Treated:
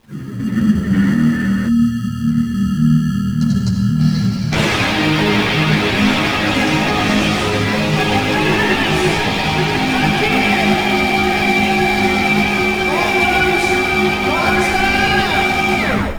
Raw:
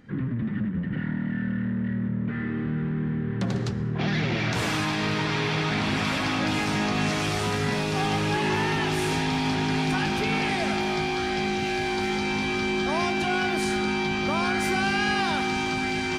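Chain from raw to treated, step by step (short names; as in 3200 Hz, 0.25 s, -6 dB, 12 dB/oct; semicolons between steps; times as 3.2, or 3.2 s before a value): tape stop at the end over 0.43 s; reverb removal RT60 0.7 s; digital reverb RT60 1.4 s, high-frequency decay 0.8×, pre-delay 30 ms, DRR 2 dB; spectral gain 1.68–4.52, 270–3900 Hz -20 dB; dynamic EQ 2700 Hz, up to +5 dB, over -42 dBFS, Q 1; AGC gain up to 14 dB; in parallel at -6 dB: sample-and-hold 29×; on the sum: high shelf 11000 Hz -6.5 dB; requantised 8-bit, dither none; ensemble effect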